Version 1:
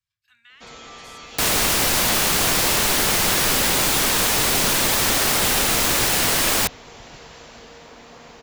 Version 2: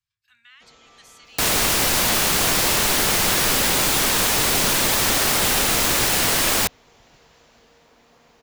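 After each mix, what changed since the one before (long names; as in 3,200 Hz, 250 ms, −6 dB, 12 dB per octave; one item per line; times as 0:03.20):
first sound −12.0 dB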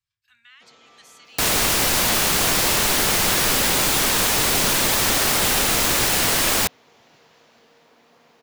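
first sound: add band-pass filter 150–6,100 Hz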